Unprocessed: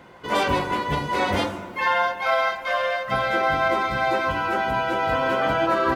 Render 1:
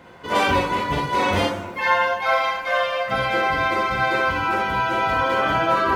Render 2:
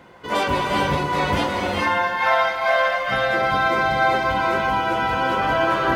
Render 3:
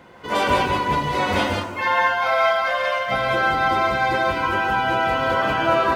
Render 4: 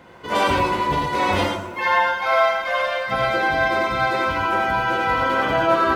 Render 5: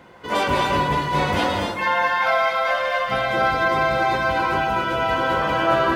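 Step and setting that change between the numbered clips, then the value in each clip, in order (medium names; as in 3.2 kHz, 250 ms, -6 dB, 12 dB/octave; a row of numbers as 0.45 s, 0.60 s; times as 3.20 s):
gated-style reverb, gate: 80 ms, 460 ms, 210 ms, 130 ms, 310 ms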